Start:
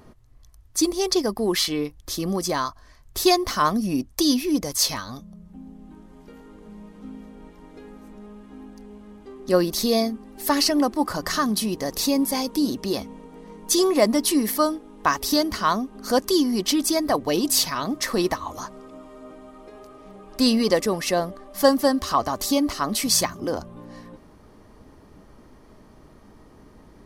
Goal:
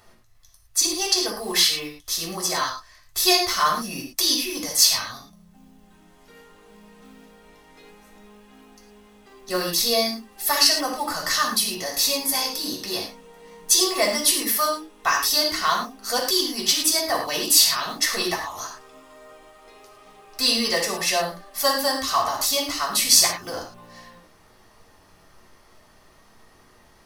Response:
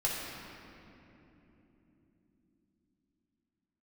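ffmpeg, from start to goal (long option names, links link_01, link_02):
-filter_complex "[0:a]acrusher=bits=9:mode=log:mix=0:aa=0.000001,tiltshelf=frequency=850:gain=-8.5[link_01];[1:a]atrim=start_sample=2205,afade=type=out:start_time=0.17:duration=0.01,atrim=end_sample=7938[link_02];[link_01][link_02]afir=irnorm=-1:irlink=0,volume=-6dB"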